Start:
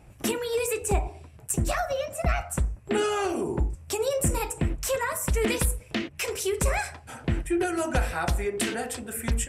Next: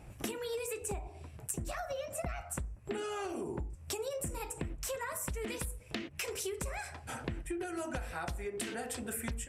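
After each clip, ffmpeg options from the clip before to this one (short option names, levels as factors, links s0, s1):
-af "acompressor=threshold=0.0178:ratio=12"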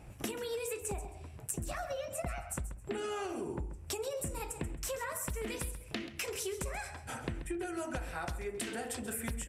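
-af "aecho=1:1:134|268|402:0.224|0.0515|0.0118"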